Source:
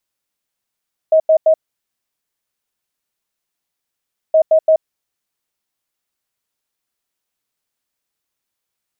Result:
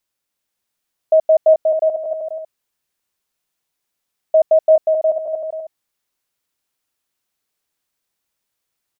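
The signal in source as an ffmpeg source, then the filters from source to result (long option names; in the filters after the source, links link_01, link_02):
-f lavfi -i "aevalsrc='0.447*sin(2*PI*634*t)*clip(min(mod(mod(t,3.22),0.17),0.08-mod(mod(t,3.22),0.17))/0.005,0,1)*lt(mod(t,3.22),0.51)':duration=6.44:sample_rate=44100"
-af "aecho=1:1:360|594|746.1|845|909.2:0.631|0.398|0.251|0.158|0.1"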